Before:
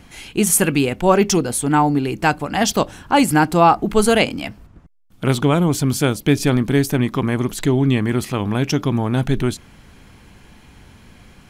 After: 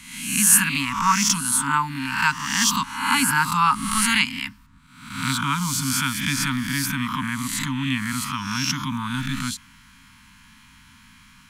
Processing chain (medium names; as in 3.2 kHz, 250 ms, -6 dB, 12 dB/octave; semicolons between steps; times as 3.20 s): reverse spectral sustain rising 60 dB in 0.76 s; Chebyshev band-stop 270–930 Hz, order 5; bass shelf 250 Hz -12 dB; trim -1 dB